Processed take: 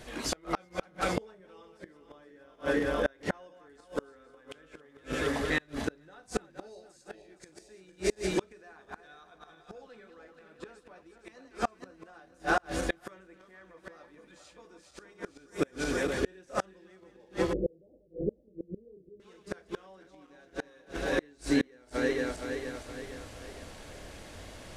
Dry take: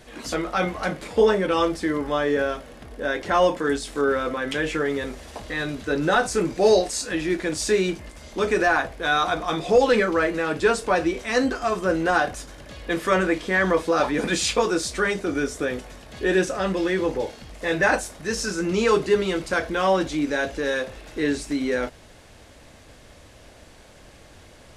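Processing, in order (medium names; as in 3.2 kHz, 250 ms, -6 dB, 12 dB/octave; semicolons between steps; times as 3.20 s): backward echo that repeats 233 ms, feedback 67%, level -6.5 dB; inverted gate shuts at -15 dBFS, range -34 dB; 17.53–19.20 s: steep low-pass 550 Hz 48 dB/octave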